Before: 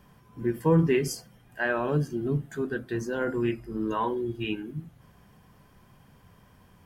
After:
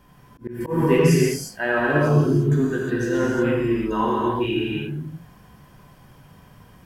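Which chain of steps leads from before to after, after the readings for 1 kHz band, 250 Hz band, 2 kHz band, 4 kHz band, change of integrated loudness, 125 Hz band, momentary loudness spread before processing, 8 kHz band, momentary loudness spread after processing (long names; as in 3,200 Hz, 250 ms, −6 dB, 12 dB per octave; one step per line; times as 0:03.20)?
+7.5 dB, +7.5 dB, +7.5 dB, +8.0 dB, +7.5 dB, +8.0 dB, 11 LU, +8.0 dB, 14 LU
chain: reverb whose tail is shaped and stops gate 380 ms flat, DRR −5 dB
volume swells 171 ms
level +1.5 dB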